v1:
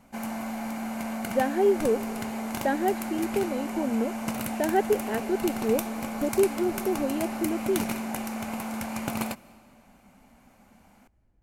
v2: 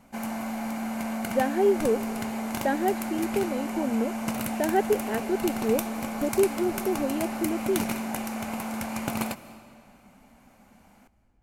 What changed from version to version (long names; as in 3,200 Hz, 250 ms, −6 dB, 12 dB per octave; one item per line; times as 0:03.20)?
background: send +7.5 dB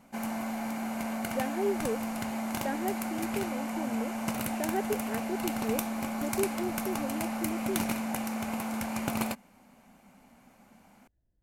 speech −7.5 dB
reverb: off